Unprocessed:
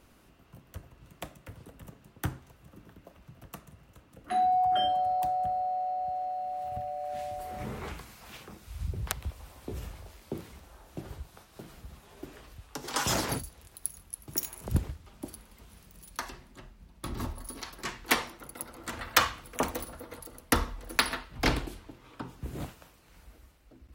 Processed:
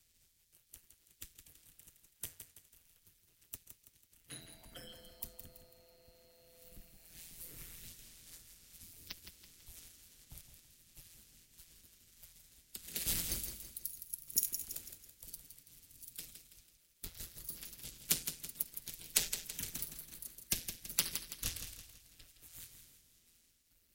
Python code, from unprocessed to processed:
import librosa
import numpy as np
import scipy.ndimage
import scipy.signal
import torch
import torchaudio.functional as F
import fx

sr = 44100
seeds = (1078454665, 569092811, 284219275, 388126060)

p1 = fx.riaa(x, sr, side='recording')
p2 = p1 * np.sin(2.0 * np.pi * 84.0 * np.arange(len(p1)) / sr)
p3 = fx.spec_gate(p2, sr, threshold_db=-10, keep='weak')
p4 = fx.tone_stack(p3, sr, knobs='10-0-1')
p5 = p4 + fx.echo_feedback(p4, sr, ms=165, feedback_pct=44, wet_db=-8.5, dry=0)
y = F.gain(torch.from_numpy(p5), 15.0).numpy()